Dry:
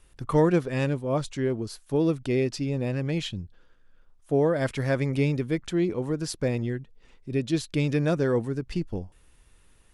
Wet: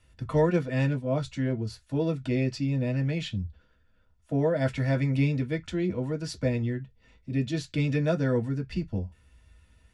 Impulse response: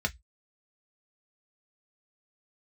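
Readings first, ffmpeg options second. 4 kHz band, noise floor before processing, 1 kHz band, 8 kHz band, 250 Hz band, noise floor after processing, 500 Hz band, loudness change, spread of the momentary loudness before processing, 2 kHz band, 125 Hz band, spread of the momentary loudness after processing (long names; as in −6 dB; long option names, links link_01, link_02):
−3.0 dB, −59 dBFS, −3.5 dB, −6.0 dB, −1.5 dB, −64 dBFS, −3.5 dB, −1.5 dB, 10 LU, −1.5 dB, +1.0 dB, 8 LU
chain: -filter_complex "[1:a]atrim=start_sample=2205[link_01];[0:a][link_01]afir=irnorm=-1:irlink=0,volume=-8.5dB"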